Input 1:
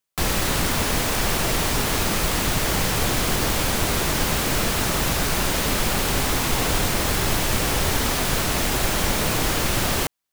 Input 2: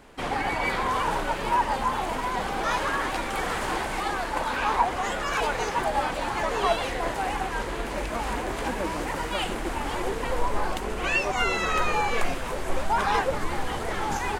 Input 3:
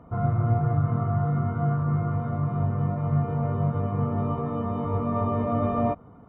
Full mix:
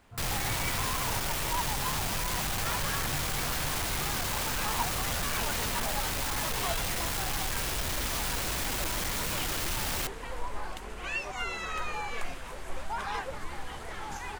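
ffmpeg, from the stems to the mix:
ffmpeg -i stem1.wav -i stem2.wav -i stem3.wav -filter_complex "[0:a]asoftclip=type=tanh:threshold=-30dB,volume=0.5dB[link_01];[1:a]volume=-8dB[link_02];[2:a]volume=-15.5dB[link_03];[link_01][link_02][link_03]amix=inputs=3:normalize=0,equalizer=frequency=350:width_type=o:width=2.7:gain=-6" out.wav

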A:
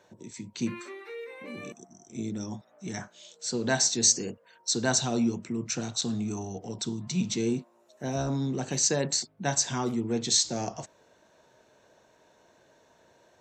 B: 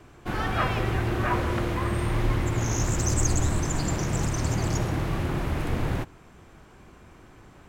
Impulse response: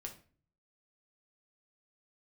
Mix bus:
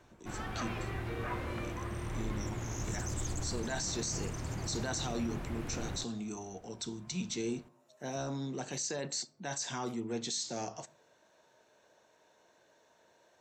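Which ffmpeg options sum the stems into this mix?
-filter_complex "[0:a]lowshelf=frequency=270:gain=-9,alimiter=limit=-20.5dB:level=0:latency=1:release=33,volume=-5.5dB,asplit=2[link_01][link_02];[link_02]volume=-7.5dB[link_03];[1:a]volume=-12.5dB[link_04];[2:a]atrim=start_sample=2205[link_05];[link_03][link_05]afir=irnorm=-1:irlink=0[link_06];[link_01][link_04][link_06]amix=inputs=3:normalize=0,alimiter=level_in=3dB:limit=-24dB:level=0:latency=1:release=11,volume=-3dB"

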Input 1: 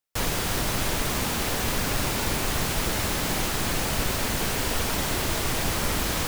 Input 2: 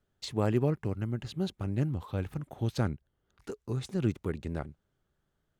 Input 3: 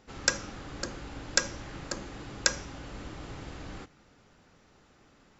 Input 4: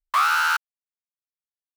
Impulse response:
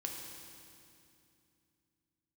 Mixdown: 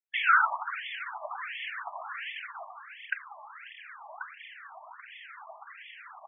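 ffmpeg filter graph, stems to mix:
-filter_complex "[0:a]lowpass=4000,adelay=200,volume=-3dB,afade=type=out:start_time=2.22:duration=0.53:silence=0.298538[link_01];[2:a]adelay=1750,volume=-6dB[link_02];[3:a]volume=-4dB,asplit=2[link_03][link_04];[link_04]volume=-5dB[link_05];[4:a]atrim=start_sample=2205[link_06];[link_05][link_06]afir=irnorm=-1:irlink=0[link_07];[link_01][link_02][link_03][link_07]amix=inputs=4:normalize=0,adynamicequalizer=threshold=0.0158:dfrequency=1100:dqfactor=1.1:tfrequency=1100:tqfactor=1.1:attack=5:release=100:ratio=0.375:range=1.5:mode=cutabove:tftype=bell,aphaser=in_gain=1:out_gain=1:delay=3.8:decay=0.68:speed=1.6:type=triangular,afftfilt=real='re*between(b*sr/1024,840*pow(2500/840,0.5+0.5*sin(2*PI*1.4*pts/sr))/1.41,840*pow(2500/840,0.5+0.5*sin(2*PI*1.4*pts/sr))*1.41)':imag='im*between(b*sr/1024,840*pow(2500/840,0.5+0.5*sin(2*PI*1.4*pts/sr))/1.41,840*pow(2500/840,0.5+0.5*sin(2*PI*1.4*pts/sr))*1.41)':win_size=1024:overlap=0.75"

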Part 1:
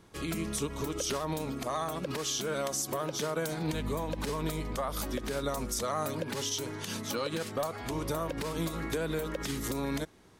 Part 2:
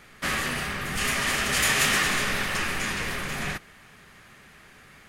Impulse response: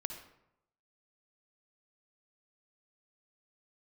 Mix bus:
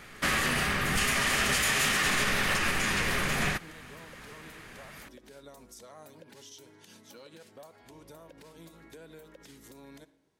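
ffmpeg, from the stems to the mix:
-filter_complex "[0:a]lowshelf=frequency=110:gain=-9.5,bandreject=frequency=1200:width=6.1,volume=-19dB,asplit=2[link_01][link_02];[link_02]volume=-7dB[link_03];[1:a]volume=2.5dB[link_04];[2:a]atrim=start_sample=2205[link_05];[link_03][link_05]afir=irnorm=-1:irlink=0[link_06];[link_01][link_04][link_06]amix=inputs=3:normalize=0,alimiter=limit=-17dB:level=0:latency=1:release=110"

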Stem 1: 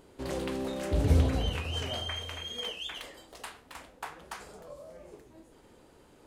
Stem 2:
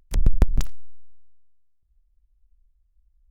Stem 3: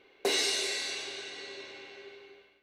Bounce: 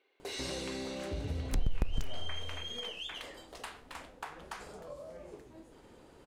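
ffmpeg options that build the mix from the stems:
ffmpeg -i stem1.wav -i stem2.wav -i stem3.wav -filter_complex "[0:a]highshelf=frequency=10000:gain=-8.5,acompressor=threshold=-40dB:ratio=3,adelay=200,volume=1dB[link_01];[1:a]adelay=1400,volume=-5dB[link_02];[2:a]highpass=310,volume=-12.5dB[link_03];[link_01][link_02][link_03]amix=inputs=3:normalize=0,acompressor=threshold=-27dB:ratio=3" out.wav

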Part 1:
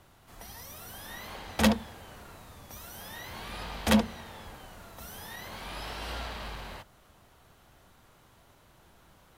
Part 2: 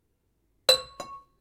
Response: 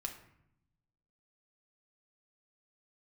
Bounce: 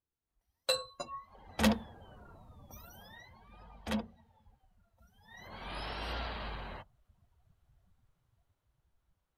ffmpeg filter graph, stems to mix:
-filter_complex "[0:a]dynaudnorm=framelen=440:gausssize=7:maxgain=4dB,volume=4.5dB,afade=type=in:start_time=1.14:duration=0.54:silence=0.223872,afade=type=out:start_time=2.8:duration=0.58:silence=0.334965,afade=type=in:start_time=5.22:duration=0.52:silence=0.281838[link_01];[1:a]alimiter=limit=-18dB:level=0:latency=1:release=420,asplit=2[link_02][link_03];[link_03]adelay=7.9,afreqshift=-2.2[link_04];[link_02][link_04]amix=inputs=2:normalize=1,volume=2dB[link_05];[link_01][link_05]amix=inputs=2:normalize=0,afftdn=noise_reduction=22:noise_floor=-49"

